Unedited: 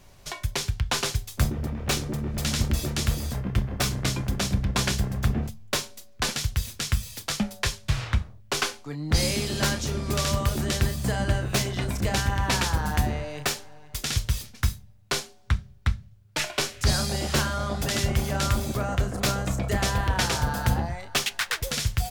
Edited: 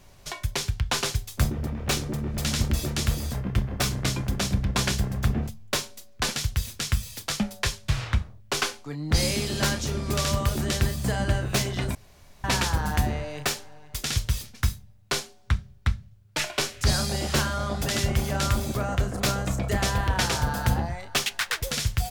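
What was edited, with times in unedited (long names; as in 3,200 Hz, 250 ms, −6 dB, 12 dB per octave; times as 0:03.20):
0:11.95–0:12.44: fill with room tone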